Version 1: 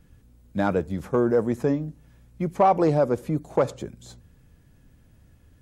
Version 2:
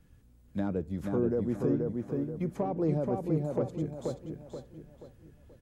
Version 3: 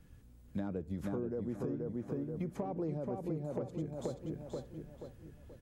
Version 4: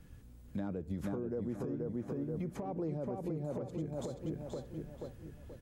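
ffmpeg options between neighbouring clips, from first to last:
-filter_complex "[0:a]acrossover=split=450[s0][s1];[s1]acompressor=threshold=0.00891:ratio=3[s2];[s0][s2]amix=inputs=2:normalize=0,asplit=2[s3][s4];[s4]adelay=480,lowpass=f=3700:p=1,volume=0.708,asplit=2[s5][s6];[s6]adelay=480,lowpass=f=3700:p=1,volume=0.4,asplit=2[s7][s8];[s8]adelay=480,lowpass=f=3700:p=1,volume=0.4,asplit=2[s9][s10];[s10]adelay=480,lowpass=f=3700:p=1,volume=0.4,asplit=2[s11][s12];[s12]adelay=480,lowpass=f=3700:p=1,volume=0.4[s13];[s3][s5][s7][s9][s11][s13]amix=inputs=6:normalize=0,volume=0.531"
-af "acompressor=threshold=0.0158:ratio=6,volume=1.19"
-af "alimiter=level_in=2.66:limit=0.0631:level=0:latency=1:release=161,volume=0.376,volume=1.5"

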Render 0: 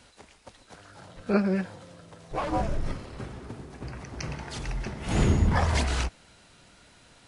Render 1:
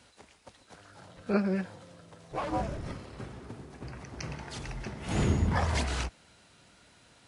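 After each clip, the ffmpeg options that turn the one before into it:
-af "highpass=56,volume=0.668"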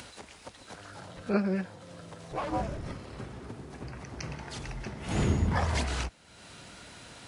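-af "acompressor=mode=upward:threshold=0.0141:ratio=2.5"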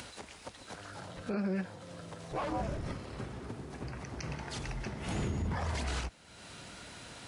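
-af "alimiter=level_in=1.26:limit=0.0631:level=0:latency=1:release=77,volume=0.794"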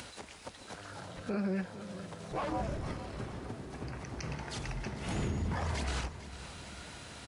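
-af "aecho=1:1:451|902|1353|1804|2255|2706:0.211|0.118|0.0663|0.0371|0.0208|0.0116"

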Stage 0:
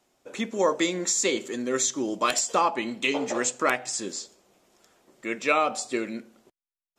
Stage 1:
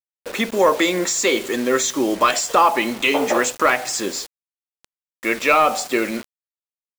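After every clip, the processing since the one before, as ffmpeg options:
-filter_complex "[0:a]asplit=2[s0][s1];[s1]alimiter=limit=0.106:level=0:latency=1:release=104,volume=1.33[s2];[s0][s2]amix=inputs=2:normalize=0,asplit=2[s3][s4];[s4]highpass=f=720:p=1,volume=3.16,asoftclip=type=tanh:threshold=0.562[s5];[s3][s5]amix=inputs=2:normalize=0,lowpass=f=2400:p=1,volume=0.501,acrusher=bits=5:mix=0:aa=0.000001,volume=1.26"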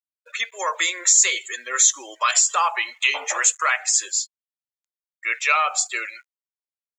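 -af "highpass=1300,afftdn=nr=33:nf=-33,equalizer=f=6800:w=4.1:g=11"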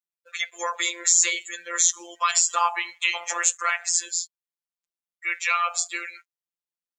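-af "afftfilt=real='hypot(re,im)*cos(PI*b)':imag='0':win_size=1024:overlap=0.75"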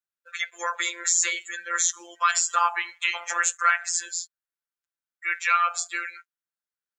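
-af "equalizer=f=1500:t=o:w=0.57:g=12,volume=0.631"

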